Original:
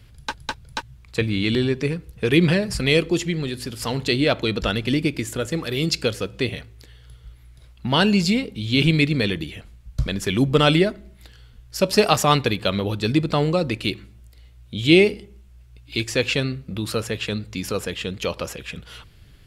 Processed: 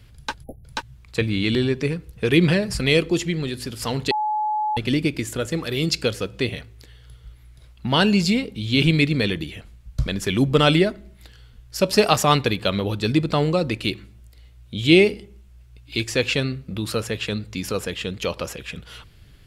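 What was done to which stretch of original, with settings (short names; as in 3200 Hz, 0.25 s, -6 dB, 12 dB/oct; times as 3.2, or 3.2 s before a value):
0.43–0.64 spectral delete 810–10000 Hz
4.11–4.77 bleep 852 Hz -20 dBFS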